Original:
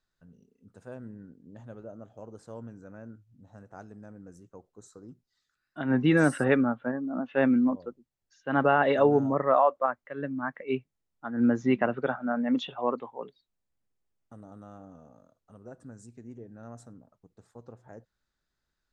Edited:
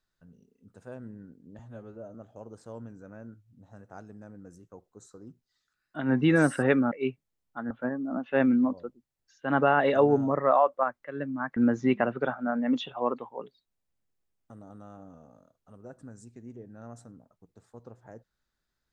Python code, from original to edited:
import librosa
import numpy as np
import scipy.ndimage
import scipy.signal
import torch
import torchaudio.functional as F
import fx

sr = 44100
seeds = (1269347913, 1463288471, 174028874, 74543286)

y = fx.edit(x, sr, fx.stretch_span(start_s=1.59, length_s=0.37, factor=1.5),
    fx.move(start_s=10.59, length_s=0.79, to_s=6.73), tone=tone)